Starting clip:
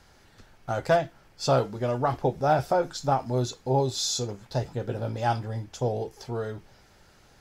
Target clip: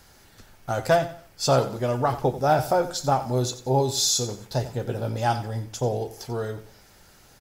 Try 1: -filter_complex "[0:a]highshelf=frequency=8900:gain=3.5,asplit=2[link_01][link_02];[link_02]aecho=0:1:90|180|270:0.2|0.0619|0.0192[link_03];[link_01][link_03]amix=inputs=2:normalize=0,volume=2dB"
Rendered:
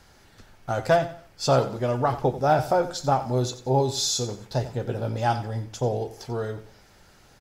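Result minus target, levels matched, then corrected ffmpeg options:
8,000 Hz band −3.5 dB
-filter_complex "[0:a]highshelf=frequency=8900:gain=15.5,asplit=2[link_01][link_02];[link_02]aecho=0:1:90|180|270:0.2|0.0619|0.0192[link_03];[link_01][link_03]amix=inputs=2:normalize=0,volume=2dB"

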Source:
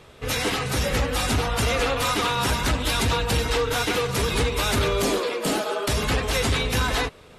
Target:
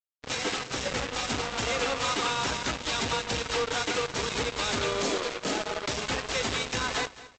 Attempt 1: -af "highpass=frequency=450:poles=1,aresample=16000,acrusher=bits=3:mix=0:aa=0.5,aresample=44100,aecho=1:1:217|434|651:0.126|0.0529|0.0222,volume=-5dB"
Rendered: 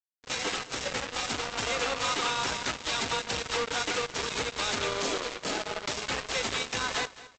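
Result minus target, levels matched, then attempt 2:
250 Hz band −3.0 dB
-af "highpass=frequency=220:poles=1,aresample=16000,acrusher=bits=3:mix=0:aa=0.5,aresample=44100,aecho=1:1:217|434|651:0.126|0.0529|0.0222,volume=-5dB"

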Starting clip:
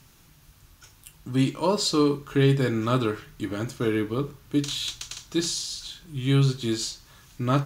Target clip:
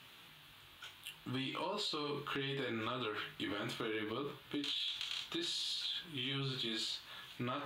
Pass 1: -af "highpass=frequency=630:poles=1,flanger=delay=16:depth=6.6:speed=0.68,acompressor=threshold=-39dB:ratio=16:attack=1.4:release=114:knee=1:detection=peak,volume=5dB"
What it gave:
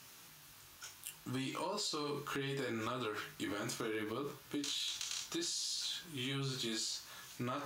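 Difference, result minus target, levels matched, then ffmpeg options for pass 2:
8,000 Hz band +11.0 dB
-af "highpass=frequency=630:poles=1,highshelf=frequency=4400:width_type=q:width=3:gain=-8.5,flanger=delay=16:depth=6.6:speed=0.68,acompressor=threshold=-39dB:ratio=16:attack=1.4:release=114:knee=1:detection=peak,volume=5dB"

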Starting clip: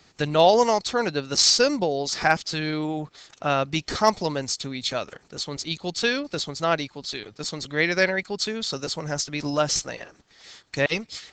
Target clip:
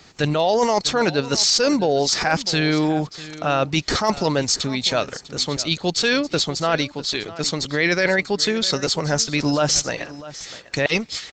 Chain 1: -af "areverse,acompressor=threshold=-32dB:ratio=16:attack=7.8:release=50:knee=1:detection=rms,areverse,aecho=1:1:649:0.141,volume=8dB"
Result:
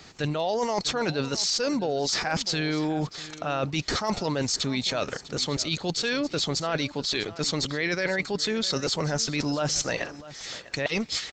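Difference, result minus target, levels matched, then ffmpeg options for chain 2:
downward compressor: peak gain reduction +8.5 dB
-af "areverse,acompressor=threshold=-23dB:ratio=16:attack=7.8:release=50:knee=1:detection=rms,areverse,aecho=1:1:649:0.141,volume=8dB"

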